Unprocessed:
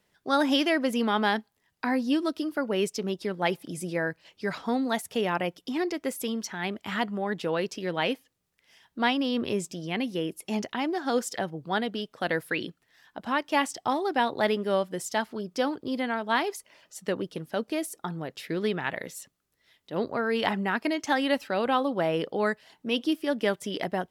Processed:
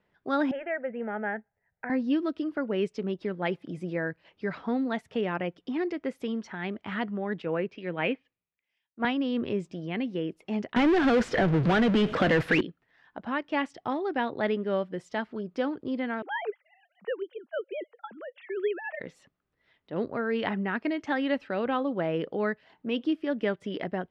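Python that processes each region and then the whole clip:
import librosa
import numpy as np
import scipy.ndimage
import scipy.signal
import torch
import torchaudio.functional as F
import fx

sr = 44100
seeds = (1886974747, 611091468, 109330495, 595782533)

y = fx.chain(x, sr, fx.lowpass(hz=2100.0, slope=24),
    fx.fixed_phaser(hz=1100.0, stages=6), at=(0.51, 1.9))
y = fx.chain(y, sr, fx.env_lowpass_down(base_hz=2000.0, full_db=-24.5),
    fx.peak_eq(hz=2400.0, db=8.0, octaves=0.35),
    fx.band_widen(depth_pct=100), at=(7.42, 9.05))
y = fx.chain(y, sr, fx.power_curve(exponent=0.35),
    fx.band_squash(depth_pct=70), at=(10.76, 12.61))
y = fx.chain(y, sr, fx.sine_speech(),
    fx.highpass(hz=410.0, slope=12), at=(16.22, 19.0))
y = scipy.signal.sosfilt(scipy.signal.butter(2, 2200.0, 'lowpass', fs=sr, output='sos'), y)
y = fx.dynamic_eq(y, sr, hz=890.0, q=1.2, threshold_db=-41.0, ratio=4.0, max_db=-6)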